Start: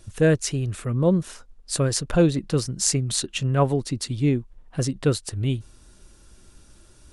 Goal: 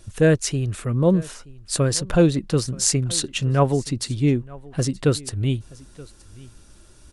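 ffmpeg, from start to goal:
ffmpeg -i in.wav -af "aecho=1:1:926:0.0794,volume=2dB" out.wav

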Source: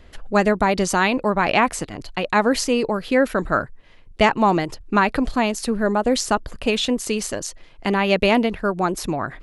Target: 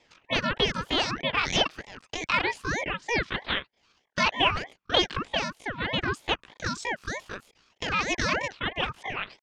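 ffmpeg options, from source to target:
ffmpeg -i in.wav -af "highpass=frequency=240:width=0.5412,highpass=frequency=240:width=1.3066,equalizer=frequency=680:width_type=q:width=4:gain=-4,equalizer=frequency=990:width_type=q:width=4:gain=9,equalizer=frequency=1700:width_type=q:width=4:gain=-4,lowpass=frequency=2800:width=0.5412,lowpass=frequency=2800:width=1.3066,asetrate=83250,aresample=44100,atempo=0.529732,aeval=exprs='val(0)*sin(2*PI*1000*n/s+1000*0.45/3.2*sin(2*PI*3.2*n/s))':channel_layout=same,volume=-5.5dB" out.wav

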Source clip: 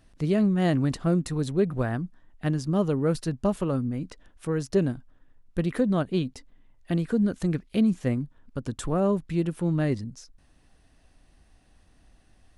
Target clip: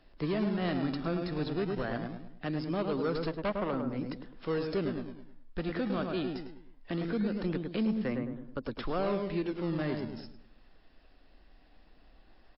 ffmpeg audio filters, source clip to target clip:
ffmpeg -i in.wav -filter_complex "[0:a]asplit=3[link_01][link_02][link_03];[link_01]afade=type=out:start_time=3.26:duration=0.02[link_04];[link_02]aeval=exprs='0.211*(cos(1*acos(clip(val(0)/0.211,-1,1)))-cos(1*PI/2))+0.00531*(cos(3*acos(clip(val(0)/0.211,-1,1)))-cos(3*PI/2))+0.0133*(cos(4*acos(clip(val(0)/0.211,-1,1)))-cos(4*PI/2))+0.015*(cos(6*acos(clip(val(0)/0.211,-1,1)))-cos(6*PI/2))+0.0211*(cos(7*acos(clip(val(0)/0.211,-1,1)))-cos(7*PI/2))':channel_layout=same,afade=type=in:start_time=3.26:duration=0.02,afade=type=out:start_time=3.7:duration=0.02[link_05];[link_03]afade=type=in:start_time=3.7:duration=0.02[link_06];[link_04][link_05][link_06]amix=inputs=3:normalize=0,acrossover=split=330|740[link_07][link_08][link_09];[link_07]equalizer=frequency=100:width=0.54:gain=-15[link_10];[link_08]asoftclip=type=tanh:threshold=-32.5dB[link_11];[link_10][link_11][link_09]amix=inputs=3:normalize=0,asplit=2[link_12][link_13];[link_13]adelay=105,lowpass=frequency=1300:poles=1,volume=-4.5dB,asplit=2[link_14][link_15];[link_15]adelay=105,lowpass=frequency=1300:poles=1,volume=0.4,asplit=2[link_16][link_17];[link_17]adelay=105,lowpass=frequency=1300:poles=1,volume=0.4,asplit=2[link_18][link_19];[link_19]adelay=105,lowpass=frequency=1300:poles=1,volume=0.4,asplit=2[link_20][link_21];[link_21]adelay=105,lowpass=frequency=1300:poles=1,volume=0.4[link_22];[link_12][link_14][link_16][link_18][link_20][link_22]amix=inputs=6:normalize=0,asplit=2[link_23][link_24];[link_24]acrusher=samples=24:mix=1:aa=0.000001:lfo=1:lforange=38.4:lforate=0.21,volume=-7dB[link_25];[link_23][link_25]amix=inputs=2:normalize=0,asoftclip=type=hard:threshold=-19dB,alimiter=limit=-23.5dB:level=0:latency=1:release=284" -ar 12000 -c:a libmp3lame -b:a 32k out.mp3

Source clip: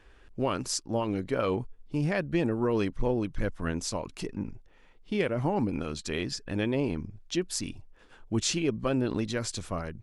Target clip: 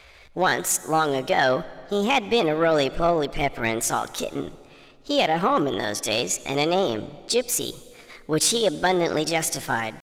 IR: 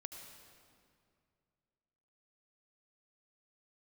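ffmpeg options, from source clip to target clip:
-filter_complex "[0:a]asplit=2[link_01][link_02];[link_02]highpass=frequency=720:poles=1,volume=13dB,asoftclip=type=tanh:threshold=-12.5dB[link_03];[link_01][link_03]amix=inputs=2:normalize=0,lowpass=frequency=5500:poles=1,volume=-6dB,asetrate=60591,aresample=44100,atempo=0.727827,asplit=2[link_04][link_05];[1:a]atrim=start_sample=2205[link_06];[link_05][link_06]afir=irnorm=-1:irlink=0,volume=-7.5dB[link_07];[link_04][link_07]amix=inputs=2:normalize=0,volume=3.5dB"

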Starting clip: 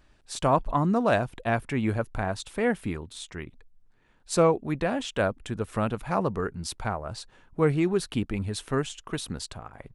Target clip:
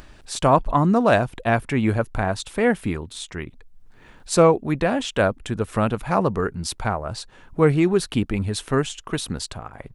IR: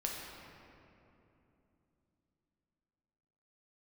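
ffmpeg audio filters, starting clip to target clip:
-af "acompressor=mode=upward:threshold=-42dB:ratio=2.5,volume=6dB"

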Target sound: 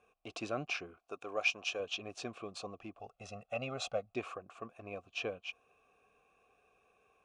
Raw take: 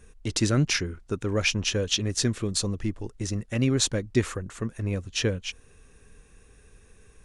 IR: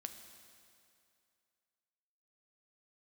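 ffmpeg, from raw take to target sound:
-filter_complex "[0:a]asplit=3[link_01][link_02][link_03];[link_01]bandpass=frequency=730:width_type=q:width=8,volume=0dB[link_04];[link_02]bandpass=frequency=1090:width_type=q:width=8,volume=-6dB[link_05];[link_03]bandpass=frequency=2440:width_type=q:width=8,volume=-9dB[link_06];[link_04][link_05][link_06]amix=inputs=3:normalize=0,asettb=1/sr,asplit=3[link_07][link_08][link_09];[link_07]atrim=end=0.974[link_10];[link_08]atrim=start=0.97:end=1.8,asetpts=PTS-STARTPTS,afade=type=in:duration=0.004:curve=qsin,afade=type=out:start_time=0.826:duration=0.004:curve=qsin,bass=frequency=250:gain=-10,treble=frequency=4000:gain=7[link_11];[link_09]atrim=start=1.796[link_12];[link_10][link_11]acrossfade=duration=0.004:curve1=hsin:curve2=qsin[link_13];[link_13][link_12]acrossfade=duration=0.004:curve1=qsin:curve2=hsin,asettb=1/sr,asplit=3[link_14][link_15][link_16];[link_14]atrim=end=2.994[link_17];[link_15]atrim=start=2.99:end=4.14,asetpts=PTS-STARTPTS,afade=type=in:duration=0.004:curve=qsin,afade=type=out:start_time=1.146:duration=0.004:curve=qsin,aecho=1:1:1.5:0.86,atrim=end_sample=50715[link_18];[link_16]atrim=start=4.136[link_19];[link_17][link_18]acrossfade=duration=0.004:curve1=hsin:curve2=qsin[link_20];[link_20][link_19]acrossfade=duration=0.004:curve1=qsin:curve2=hsin,volume=4.5dB"

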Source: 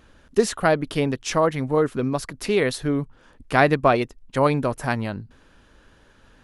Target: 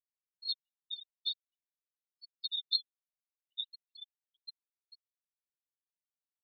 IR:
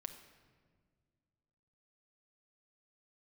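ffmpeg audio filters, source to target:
-filter_complex "[0:a]aecho=1:1:1.4:0.56,aecho=1:1:242:0.15,asplit=2[link_01][link_02];[link_02]acompressor=threshold=-30dB:ratio=8,volume=0.5dB[link_03];[link_01][link_03]amix=inputs=2:normalize=0,asoftclip=type=tanh:threshold=-3dB,flanger=delay=6.3:depth=4.2:regen=40:speed=0.48:shape=sinusoidal,afftfilt=real='re*gte(hypot(re,im),0.0562)':imag='im*gte(hypot(re,im),0.0562)':win_size=1024:overlap=0.75,asuperpass=centerf=3900:order=12:qfactor=4.9,volume=7dB"

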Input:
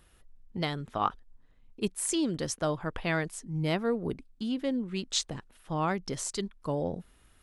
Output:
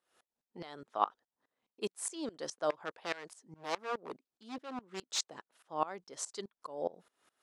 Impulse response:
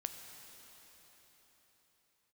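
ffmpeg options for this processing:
-filter_complex "[0:a]equalizer=frequency=2500:width_type=o:width=1.8:gain=-7.5,asettb=1/sr,asplit=3[link_01][link_02][link_03];[link_01]atrim=end=2.704[link_04];[link_02]atrim=start=2.7:end=5.31,asetpts=PTS-STARTPTS,afade=type=in:duration=0.004:curve=qsin,afade=type=out:start_time=2.606:duration=0.004:curve=qsin,aeval=exprs='0.0422*(abs(mod(val(0)/0.0422+3,4)-2)-1)':channel_layout=same[link_05];[link_03]atrim=start=5.306[link_06];[link_04][link_05]acrossfade=duration=0.004:curve1=hsin:curve2=qsin[link_07];[link_07][link_06]acrossfade=duration=0.004:curve1=qsin:curve2=hsin,highpass=530,lowpass=7000,aeval=exprs='val(0)*pow(10,-22*if(lt(mod(-4.8*n/s,1),2*abs(-4.8)/1000),1-mod(-4.8*n/s,1)/(2*abs(-4.8)/1000),(mod(-4.8*n/s,1)-2*abs(-4.8)/1000)/(1-2*abs(-4.8)/1000))/20)':channel_layout=same,volume=5.5dB"

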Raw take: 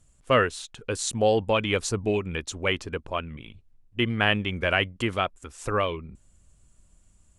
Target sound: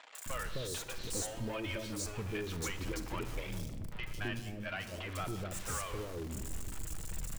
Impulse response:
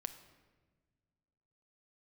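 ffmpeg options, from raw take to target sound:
-filter_complex "[0:a]aeval=exprs='val(0)+0.5*0.0447*sgn(val(0))':channel_layout=same,asettb=1/sr,asplit=3[link_01][link_02][link_03];[link_01]atrim=end=1.234[link_04];[link_02]atrim=start=1.23:end=1.87,asetpts=PTS-STARTPTS,afade=type=in:duration=0.004:curve=qsin,afade=type=out:start_time=0.636:duration=0.004:curve=qsin,aecho=1:1:3.2:0.92,atrim=end_sample=28224[link_05];[link_03]atrim=start=1.866[link_06];[link_04][link_05]acrossfade=duration=0.004:curve1=hsin:curve2=qsin[link_07];[link_07][link_06]acrossfade=duration=0.004:curve1=qsin:curve2=hsin,asettb=1/sr,asplit=3[link_08][link_09][link_10];[link_08]atrim=end=4.134[link_11];[link_09]atrim=start=4.13:end=4.72,asetpts=PTS-STARTPTS,afade=type=in:duration=0.004:curve=qsin,afade=type=out:start_time=0.586:duration=0.004:curve=qsin,agate=range=-15dB:threshold=-21dB:ratio=16:detection=peak[link_12];[link_10]atrim=start=4.716[link_13];[link_11][link_12]acrossfade=duration=0.004:curve1=hsin:curve2=qsin[link_14];[link_14][link_13]acrossfade=duration=0.004:curve1=qsin:curve2=hsin,acompressor=threshold=-24dB:ratio=6,asoftclip=type=tanh:threshold=-22.5dB,asplit=3[link_15][link_16][link_17];[link_15]afade=type=out:start_time=2.57:duration=0.02[link_18];[link_16]afreqshift=-55,afade=type=in:start_time=2.57:duration=0.02,afade=type=out:start_time=3.43:duration=0.02[link_19];[link_17]afade=type=in:start_time=3.43:duration=0.02[link_20];[link_18][link_19][link_20]amix=inputs=3:normalize=0,flanger=delay=1.1:depth=2.6:regen=-58:speed=0.56:shape=triangular,acrossover=split=580|3900[link_21][link_22][link_23];[link_23]adelay=150[link_24];[link_21]adelay=260[link_25];[link_25][link_22][link_24]amix=inputs=3:normalize=0[link_26];[1:a]atrim=start_sample=2205[link_27];[link_26][link_27]afir=irnorm=-1:irlink=0,volume=-1.5dB"

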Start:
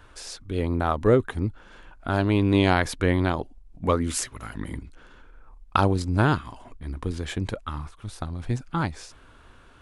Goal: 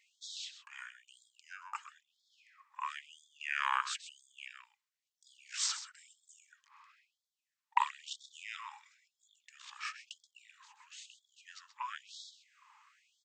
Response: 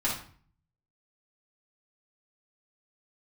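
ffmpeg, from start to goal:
-af "asetrate=32667,aresample=44100,aecho=1:1:129:0.251,afftfilt=real='re*gte(b*sr/1024,800*pow(3300/800,0.5+0.5*sin(2*PI*1*pts/sr)))':imag='im*gte(b*sr/1024,800*pow(3300/800,0.5+0.5*sin(2*PI*1*pts/sr)))':win_size=1024:overlap=0.75,volume=-5.5dB"

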